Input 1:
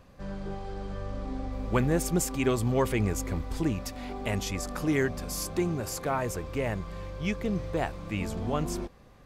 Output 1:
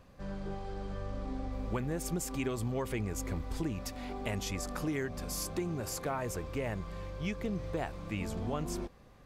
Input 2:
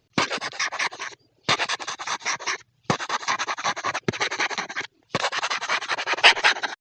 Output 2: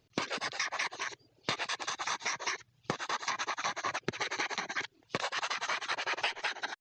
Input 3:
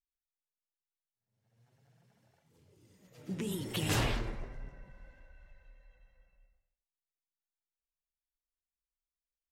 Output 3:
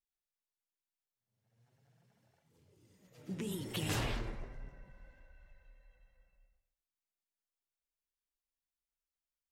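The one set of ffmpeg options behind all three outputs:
ffmpeg -i in.wav -af "acompressor=threshold=-27dB:ratio=12,volume=-3dB" out.wav

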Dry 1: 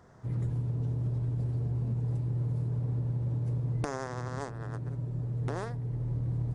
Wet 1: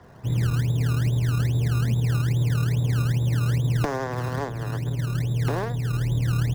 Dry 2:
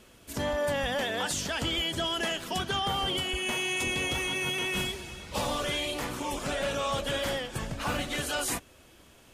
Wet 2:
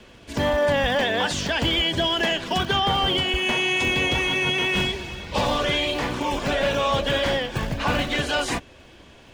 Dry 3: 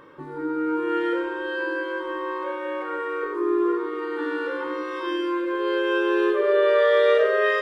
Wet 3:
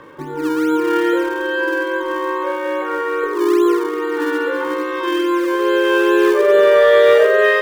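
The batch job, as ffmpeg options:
ffmpeg -i in.wav -filter_complex "[0:a]lowpass=4500,bandreject=frequency=1300:width=9.3,acrossover=split=280|400|1300[link_01][link_02][link_03][link_04];[link_01]acrusher=samples=23:mix=1:aa=0.000001:lfo=1:lforange=23:lforate=2.4[link_05];[link_05][link_02][link_03][link_04]amix=inputs=4:normalize=0,acontrast=87,volume=1.5dB" out.wav

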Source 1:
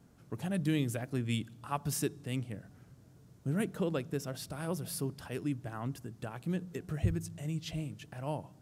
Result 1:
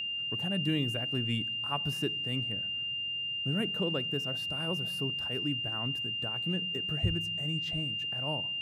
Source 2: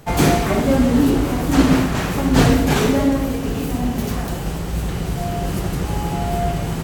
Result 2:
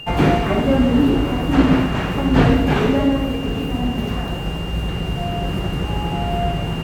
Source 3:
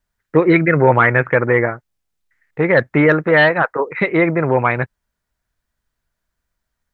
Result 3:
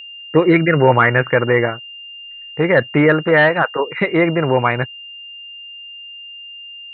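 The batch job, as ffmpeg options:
ffmpeg -i in.wav -filter_complex "[0:a]aeval=exprs='val(0)+0.0282*sin(2*PI*2800*n/s)':channel_layout=same,acrossover=split=3200[link_01][link_02];[link_02]acompressor=threshold=-46dB:ratio=4:attack=1:release=60[link_03];[link_01][link_03]amix=inputs=2:normalize=0" out.wav

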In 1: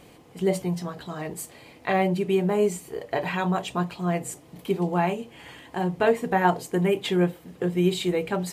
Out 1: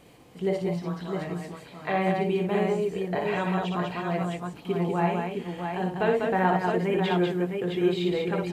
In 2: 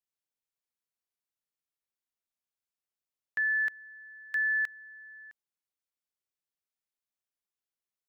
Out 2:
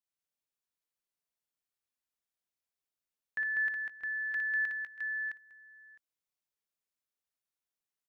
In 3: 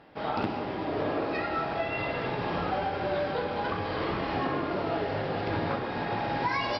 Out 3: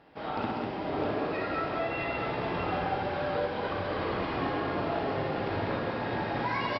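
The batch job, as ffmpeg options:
ffmpeg -i in.wav -filter_complex "[0:a]acrossover=split=4700[link_01][link_02];[link_02]acompressor=threshold=-59dB:ratio=4:attack=1:release=60[link_03];[link_01][link_03]amix=inputs=2:normalize=0,aecho=1:1:59|66|196|213|636|663:0.596|0.106|0.631|0.133|0.133|0.562,volume=-4dB" out.wav

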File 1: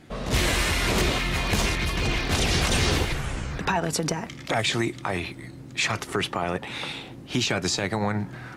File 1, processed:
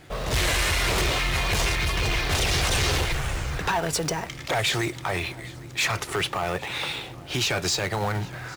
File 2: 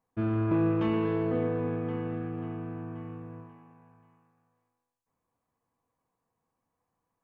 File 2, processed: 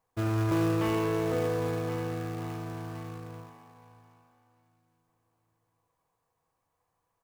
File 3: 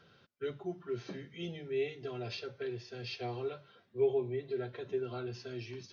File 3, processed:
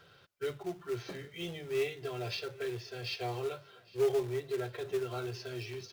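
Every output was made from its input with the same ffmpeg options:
ffmpeg -i in.wav -filter_complex "[0:a]asplit=2[link_01][link_02];[link_02]acrusher=bits=2:mode=log:mix=0:aa=0.000001,volume=-4.5dB[link_03];[link_01][link_03]amix=inputs=2:normalize=0,equalizer=frequency=230:width_type=o:width=0.74:gain=-12.5,asoftclip=type=tanh:threshold=-18.5dB,aecho=1:1:807|1614|2421:0.0794|0.0286|0.0103" out.wav

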